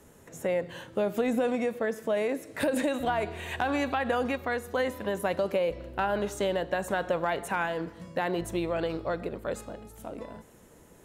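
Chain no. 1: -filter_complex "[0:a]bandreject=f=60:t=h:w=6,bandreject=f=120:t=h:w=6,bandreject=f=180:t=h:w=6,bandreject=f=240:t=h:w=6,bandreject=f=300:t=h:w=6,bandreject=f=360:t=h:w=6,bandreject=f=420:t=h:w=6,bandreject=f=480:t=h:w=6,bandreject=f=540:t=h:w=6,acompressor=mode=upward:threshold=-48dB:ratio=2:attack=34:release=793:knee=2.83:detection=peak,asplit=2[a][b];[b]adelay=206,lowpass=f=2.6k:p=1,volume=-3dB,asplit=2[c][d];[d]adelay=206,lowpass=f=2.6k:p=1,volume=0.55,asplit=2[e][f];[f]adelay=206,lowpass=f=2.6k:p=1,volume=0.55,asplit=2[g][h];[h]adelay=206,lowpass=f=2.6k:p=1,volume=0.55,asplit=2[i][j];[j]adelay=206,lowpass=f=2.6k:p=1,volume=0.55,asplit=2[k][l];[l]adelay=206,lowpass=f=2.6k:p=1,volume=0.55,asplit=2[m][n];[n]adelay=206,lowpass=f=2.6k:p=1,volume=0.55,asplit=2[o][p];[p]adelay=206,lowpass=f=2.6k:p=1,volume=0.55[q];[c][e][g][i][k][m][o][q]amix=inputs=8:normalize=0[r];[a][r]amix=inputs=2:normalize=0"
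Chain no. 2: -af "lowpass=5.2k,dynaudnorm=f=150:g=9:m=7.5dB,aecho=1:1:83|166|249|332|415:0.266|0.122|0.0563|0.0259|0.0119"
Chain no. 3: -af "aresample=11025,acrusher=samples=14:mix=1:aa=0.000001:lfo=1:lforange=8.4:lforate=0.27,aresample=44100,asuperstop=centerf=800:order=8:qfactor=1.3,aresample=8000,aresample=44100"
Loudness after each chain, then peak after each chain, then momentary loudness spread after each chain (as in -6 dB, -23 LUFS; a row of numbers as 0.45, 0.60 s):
-28.5, -22.5, -31.5 LUFS; -12.5, -7.5, -12.5 dBFS; 10, 9, 8 LU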